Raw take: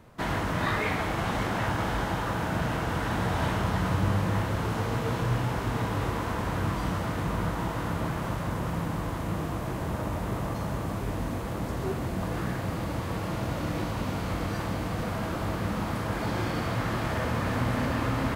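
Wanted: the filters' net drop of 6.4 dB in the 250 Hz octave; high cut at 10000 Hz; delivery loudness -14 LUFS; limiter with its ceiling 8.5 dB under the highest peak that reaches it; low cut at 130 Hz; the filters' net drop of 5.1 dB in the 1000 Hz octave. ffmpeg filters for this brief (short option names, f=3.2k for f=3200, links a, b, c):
-af "highpass=130,lowpass=10k,equalizer=f=250:t=o:g=-8,equalizer=f=1k:t=o:g=-6,volume=22dB,alimiter=limit=-4.5dB:level=0:latency=1"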